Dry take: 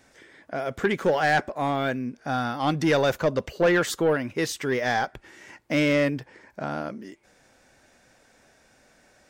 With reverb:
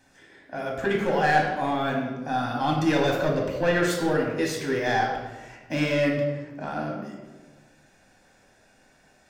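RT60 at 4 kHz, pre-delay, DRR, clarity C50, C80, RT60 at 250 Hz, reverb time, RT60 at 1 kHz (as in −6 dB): 0.85 s, 3 ms, −1.5 dB, 3.0 dB, 5.0 dB, 1.6 s, 1.3 s, 1.2 s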